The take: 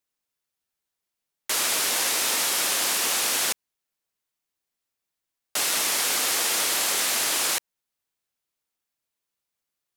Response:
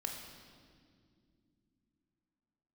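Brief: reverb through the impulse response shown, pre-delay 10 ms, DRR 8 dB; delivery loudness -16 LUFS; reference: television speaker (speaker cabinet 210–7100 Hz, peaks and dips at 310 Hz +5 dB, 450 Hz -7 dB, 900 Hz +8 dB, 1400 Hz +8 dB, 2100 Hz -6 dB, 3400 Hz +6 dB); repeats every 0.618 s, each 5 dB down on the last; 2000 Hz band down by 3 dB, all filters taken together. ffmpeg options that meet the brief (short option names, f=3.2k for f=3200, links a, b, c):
-filter_complex "[0:a]equalizer=f=2k:t=o:g=-6,aecho=1:1:618|1236|1854|2472|3090|3708|4326:0.562|0.315|0.176|0.0988|0.0553|0.031|0.0173,asplit=2[a][b];[1:a]atrim=start_sample=2205,adelay=10[c];[b][c]afir=irnorm=-1:irlink=0,volume=-8dB[d];[a][d]amix=inputs=2:normalize=0,highpass=f=210:w=0.5412,highpass=f=210:w=1.3066,equalizer=f=310:t=q:w=4:g=5,equalizer=f=450:t=q:w=4:g=-7,equalizer=f=900:t=q:w=4:g=8,equalizer=f=1.4k:t=q:w=4:g=8,equalizer=f=2.1k:t=q:w=4:g=-6,equalizer=f=3.4k:t=q:w=4:g=6,lowpass=f=7.1k:w=0.5412,lowpass=f=7.1k:w=1.3066,volume=8dB"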